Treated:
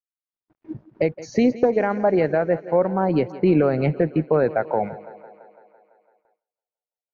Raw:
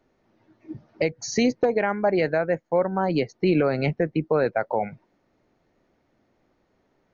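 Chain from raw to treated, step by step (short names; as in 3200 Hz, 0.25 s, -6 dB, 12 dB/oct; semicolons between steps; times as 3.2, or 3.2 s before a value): crossover distortion -57 dBFS; AGC gain up to 9 dB; LPF 1100 Hz 6 dB/oct; thinning echo 0.168 s, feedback 68%, high-pass 170 Hz, level -16.5 dB; gate with hold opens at -50 dBFS; gain -4 dB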